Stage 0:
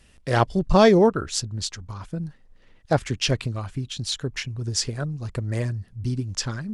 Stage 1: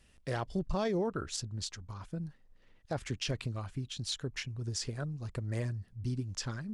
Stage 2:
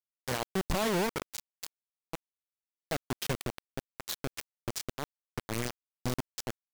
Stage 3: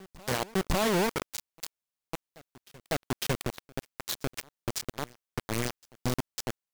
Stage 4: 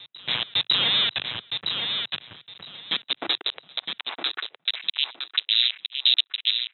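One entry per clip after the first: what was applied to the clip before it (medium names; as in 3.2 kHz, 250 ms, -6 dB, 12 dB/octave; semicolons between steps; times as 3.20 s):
peak limiter -16.5 dBFS, peak gain reduction 11.5 dB; trim -8.5 dB
bit crusher 5-bit
reverse echo 552 ms -23 dB; trim +3 dB
frequency inversion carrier 3.9 kHz; high-pass sweep 120 Hz -> 2.9 kHz, 2.49–4.97 s; feedback delay 963 ms, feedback 18%, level -6 dB; trim +4 dB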